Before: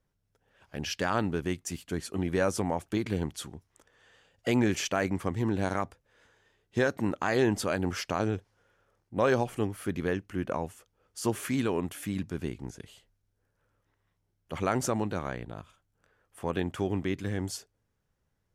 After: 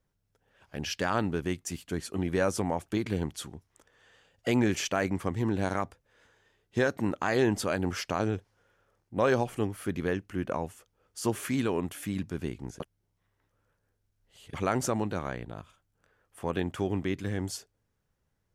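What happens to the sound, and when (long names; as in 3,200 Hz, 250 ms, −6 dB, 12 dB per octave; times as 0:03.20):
0:12.80–0:14.54: reverse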